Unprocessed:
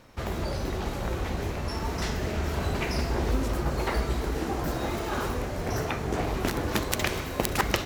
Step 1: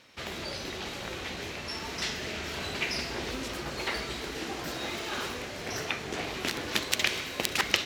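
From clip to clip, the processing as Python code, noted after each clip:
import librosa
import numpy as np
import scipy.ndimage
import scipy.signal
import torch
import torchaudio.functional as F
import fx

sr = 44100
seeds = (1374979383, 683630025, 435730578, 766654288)

y = fx.weighting(x, sr, curve='D')
y = F.gain(torch.from_numpy(y), -6.0).numpy()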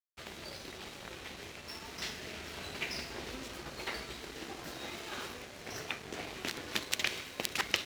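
y = np.sign(x) * np.maximum(np.abs(x) - 10.0 ** (-43.0 / 20.0), 0.0)
y = F.gain(torch.from_numpy(y), -5.0).numpy()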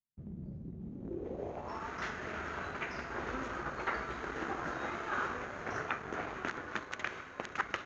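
y = fx.rider(x, sr, range_db=5, speed_s=0.5)
y = fx.lowpass_res(y, sr, hz=6600.0, q=11.0)
y = fx.filter_sweep_lowpass(y, sr, from_hz=180.0, to_hz=1400.0, start_s=0.82, end_s=1.88, q=2.7)
y = F.gain(torch.from_numpy(y), 1.0).numpy()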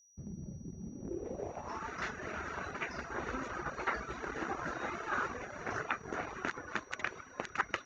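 y = fx.dereverb_blind(x, sr, rt60_s=0.76)
y = y + 10.0 ** (-64.0 / 20.0) * np.sin(2.0 * np.pi * 5800.0 * np.arange(len(y)) / sr)
y = fx.notch(y, sr, hz=3200.0, q=14.0)
y = F.gain(torch.from_numpy(y), 1.5).numpy()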